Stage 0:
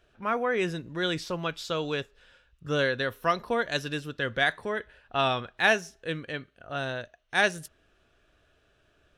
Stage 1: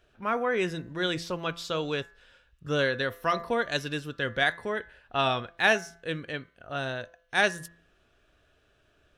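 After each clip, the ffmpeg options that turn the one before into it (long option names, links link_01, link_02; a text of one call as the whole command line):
ffmpeg -i in.wav -af "bandreject=frequency=169.4:width_type=h:width=4,bandreject=frequency=338.8:width_type=h:width=4,bandreject=frequency=508.2:width_type=h:width=4,bandreject=frequency=677.6:width_type=h:width=4,bandreject=frequency=847:width_type=h:width=4,bandreject=frequency=1016.4:width_type=h:width=4,bandreject=frequency=1185.8:width_type=h:width=4,bandreject=frequency=1355.2:width_type=h:width=4,bandreject=frequency=1524.6:width_type=h:width=4,bandreject=frequency=1694:width_type=h:width=4,bandreject=frequency=1863.4:width_type=h:width=4,bandreject=frequency=2032.8:width_type=h:width=4,bandreject=frequency=2202.2:width_type=h:width=4" out.wav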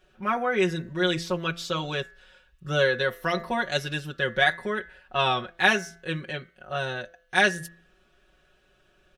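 ffmpeg -i in.wav -af "aecho=1:1:5.4:0.99" out.wav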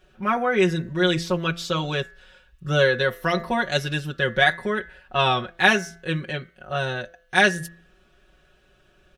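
ffmpeg -i in.wav -af "equalizer=frequency=69:width=0.32:gain=4,volume=3dB" out.wav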